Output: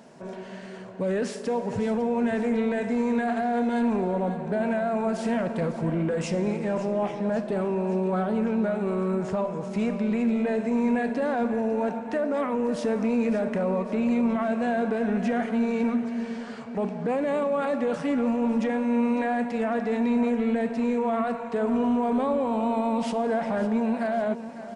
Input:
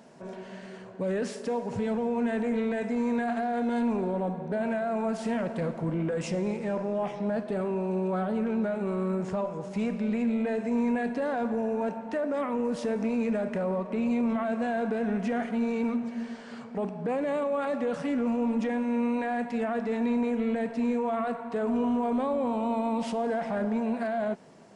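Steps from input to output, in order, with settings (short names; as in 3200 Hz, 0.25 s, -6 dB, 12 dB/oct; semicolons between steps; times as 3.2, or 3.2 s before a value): feedback echo 0.552 s, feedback 57%, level -14 dB; gain +3 dB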